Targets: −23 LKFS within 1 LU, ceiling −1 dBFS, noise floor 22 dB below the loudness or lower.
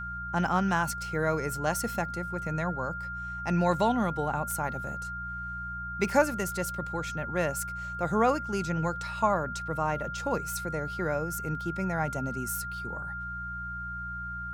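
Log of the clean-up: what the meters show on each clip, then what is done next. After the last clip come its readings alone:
mains hum 60 Hz; hum harmonics up to 180 Hz; level of the hum −40 dBFS; interfering tone 1,400 Hz; level of the tone −35 dBFS; integrated loudness −30.5 LKFS; sample peak −11.0 dBFS; target loudness −23.0 LKFS
→ hum removal 60 Hz, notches 3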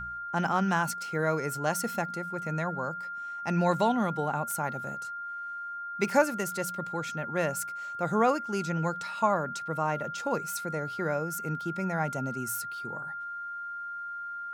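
mains hum none found; interfering tone 1,400 Hz; level of the tone −35 dBFS
→ notch filter 1,400 Hz, Q 30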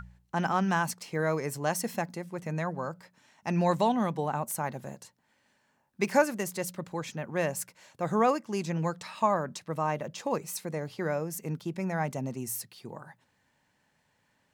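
interfering tone none found; integrated loudness −31.0 LKFS; sample peak −12.0 dBFS; target loudness −23.0 LKFS
→ level +8 dB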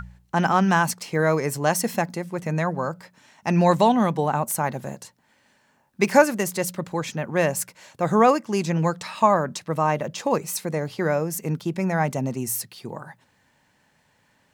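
integrated loudness −23.0 LKFS; sample peak −4.0 dBFS; background noise floor −64 dBFS

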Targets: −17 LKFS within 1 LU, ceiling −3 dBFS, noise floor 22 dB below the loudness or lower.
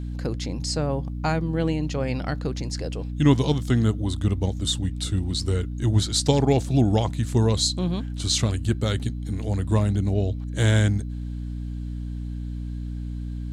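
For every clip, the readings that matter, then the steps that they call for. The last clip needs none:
mains hum 60 Hz; hum harmonics up to 300 Hz; level of the hum −28 dBFS; integrated loudness −24.5 LKFS; sample peak −6.0 dBFS; target loudness −17.0 LKFS
→ hum removal 60 Hz, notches 5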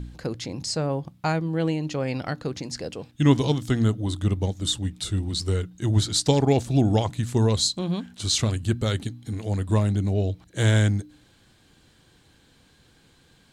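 mains hum none found; integrated loudness −24.5 LKFS; sample peak −6.0 dBFS; target loudness −17.0 LKFS
→ level +7.5 dB
brickwall limiter −3 dBFS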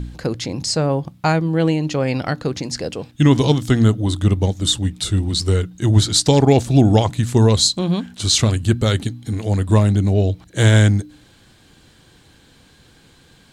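integrated loudness −17.5 LKFS; sample peak −3.0 dBFS; background noise floor −51 dBFS

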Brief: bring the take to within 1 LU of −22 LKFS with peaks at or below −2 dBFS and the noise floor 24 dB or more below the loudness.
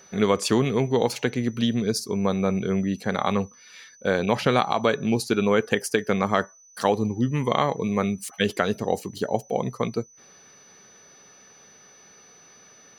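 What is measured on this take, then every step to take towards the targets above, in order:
interfering tone 6,000 Hz; level of the tone −51 dBFS; integrated loudness −24.5 LKFS; sample peak −6.5 dBFS; target loudness −22.0 LKFS
→ notch filter 6,000 Hz, Q 30
level +2.5 dB

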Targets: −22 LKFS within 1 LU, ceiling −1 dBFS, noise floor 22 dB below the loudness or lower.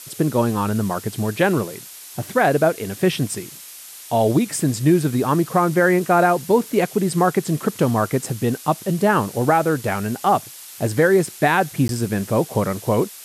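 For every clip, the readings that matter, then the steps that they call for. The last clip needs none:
number of dropouts 1; longest dropout 12 ms; background noise floor −39 dBFS; target noise floor −42 dBFS; integrated loudness −20.0 LKFS; sample peak −6.0 dBFS; target loudness −22.0 LKFS
→ repair the gap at 0:11.88, 12 ms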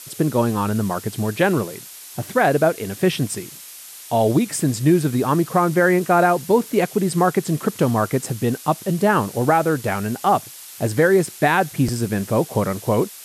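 number of dropouts 0; background noise floor −39 dBFS; target noise floor −42 dBFS
→ noise reduction from a noise print 6 dB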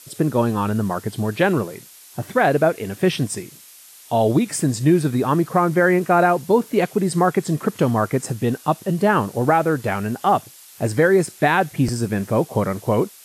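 background noise floor −45 dBFS; integrated loudness −20.0 LKFS; sample peak −6.0 dBFS; target loudness −22.0 LKFS
→ level −2 dB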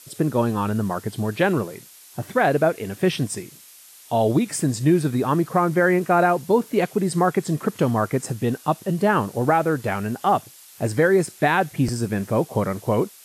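integrated loudness −22.0 LKFS; sample peak −8.0 dBFS; background noise floor −47 dBFS

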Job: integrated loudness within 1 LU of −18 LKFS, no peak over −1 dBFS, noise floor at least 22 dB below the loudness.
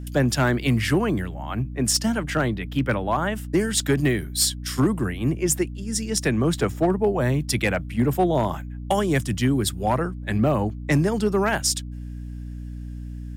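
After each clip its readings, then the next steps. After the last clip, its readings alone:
share of clipped samples 0.3%; peaks flattened at −12.5 dBFS; mains hum 60 Hz; hum harmonics up to 300 Hz; level of the hum −31 dBFS; integrated loudness −23.0 LKFS; sample peak −12.5 dBFS; target loudness −18.0 LKFS
→ clipped peaks rebuilt −12.5 dBFS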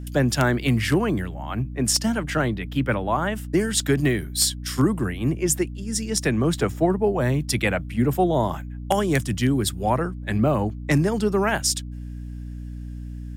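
share of clipped samples 0.0%; mains hum 60 Hz; hum harmonics up to 300 Hz; level of the hum −31 dBFS
→ mains-hum notches 60/120/180/240/300 Hz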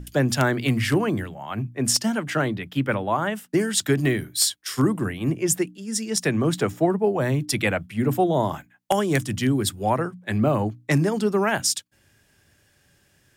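mains hum none found; integrated loudness −23.5 LKFS; sample peak −4.0 dBFS; target loudness −18.0 LKFS
→ level +5.5 dB
brickwall limiter −1 dBFS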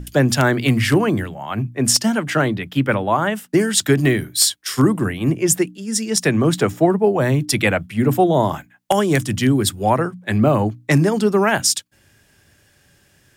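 integrated loudness −18.0 LKFS; sample peak −1.0 dBFS; background noise floor −57 dBFS

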